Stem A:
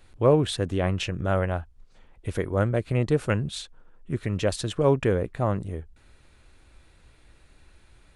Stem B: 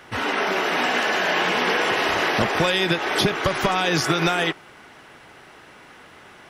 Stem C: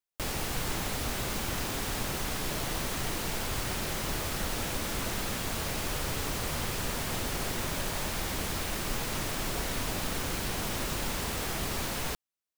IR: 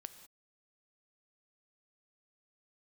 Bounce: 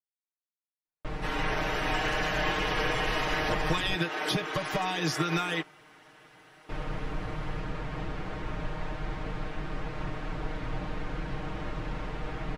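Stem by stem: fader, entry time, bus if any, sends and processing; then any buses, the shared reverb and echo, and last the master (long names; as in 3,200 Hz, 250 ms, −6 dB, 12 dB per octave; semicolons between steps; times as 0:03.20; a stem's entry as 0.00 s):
muted
−11.5 dB, 1.10 s, no send, no processing
−5.0 dB, 0.85 s, muted 0:03.95–0:06.69, no send, sub-octave generator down 2 octaves, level +3 dB; low-pass filter 2,000 Hz 12 dB per octave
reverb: not used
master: comb filter 6.5 ms, depth 95%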